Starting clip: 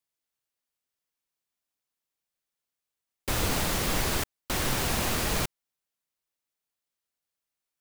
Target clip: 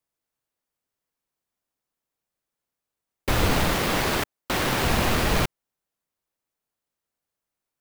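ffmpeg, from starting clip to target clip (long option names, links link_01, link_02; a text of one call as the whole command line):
ffmpeg -i in.wav -filter_complex "[0:a]asettb=1/sr,asplit=3[link_01][link_02][link_03];[link_01]atrim=end=3.734[link_04];[link_02]atrim=start=3.73:end=4.83,asetpts=PTS-STARTPTS,afade=type=in:duration=0.004:curve=qsin,afade=type=out:start_time=1.096:duration=0.004:curve=qsin,lowshelf=frequency=95:gain=-11.5[link_05];[link_03]atrim=start=4.826[link_06];[link_04][link_05]acrossfade=duration=0.004:curve1=hsin:curve2=qsin[link_07];[link_07][link_06]acrossfade=duration=0.004:curve1=qsin:curve2=hsin,asplit=2[link_08][link_09];[link_09]adynamicsmooth=sensitivity=6.5:basefreq=2000,volume=2dB[link_10];[link_08][link_10]amix=inputs=2:normalize=0" out.wav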